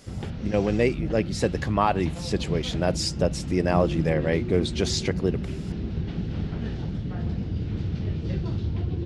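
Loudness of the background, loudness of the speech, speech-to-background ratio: -31.0 LUFS, -26.0 LUFS, 5.0 dB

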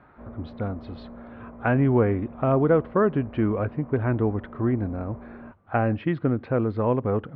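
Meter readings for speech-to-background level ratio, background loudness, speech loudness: 18.5 dB, -43.5 LUFS, -25.0 LUFS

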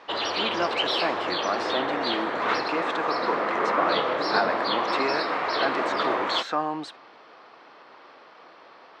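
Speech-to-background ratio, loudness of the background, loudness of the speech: -5.0 dB, -26.0 LUFS, -31.0 LUFS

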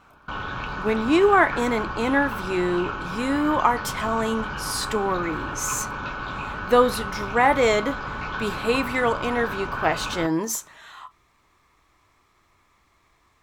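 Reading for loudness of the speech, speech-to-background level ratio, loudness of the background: -23.5 LUFS, 7.5 dB, -31.0 LUFS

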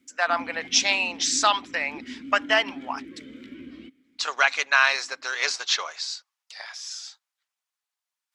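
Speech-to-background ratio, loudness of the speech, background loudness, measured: 17.5 dB, -23.5 LUFS, -41.0 LUFS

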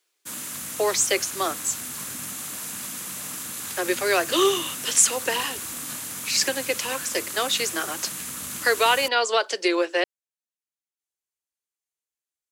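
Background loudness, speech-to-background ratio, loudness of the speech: -31.0 LUFS, 7.5 dB, -23.5 LUFS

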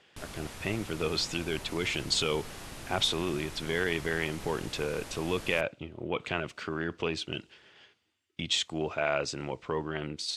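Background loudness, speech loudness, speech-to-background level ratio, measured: -44.0 LUFS, -32.0 LUFS, 12.0 dB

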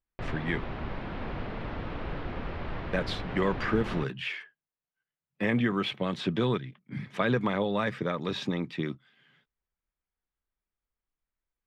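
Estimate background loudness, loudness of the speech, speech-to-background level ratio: -38.0 LUFS, -31.0 LUFS, 7.0 dB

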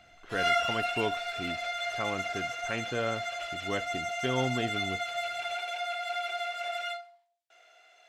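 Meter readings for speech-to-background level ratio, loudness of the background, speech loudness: -3.5 dB, -32.5 LUFS, -36.0 LUFS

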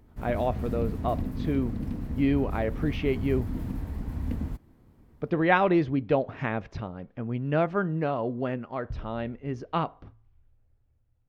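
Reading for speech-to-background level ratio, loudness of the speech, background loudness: 5.5 dB, -29.0 LUFS, -34.5 LUFS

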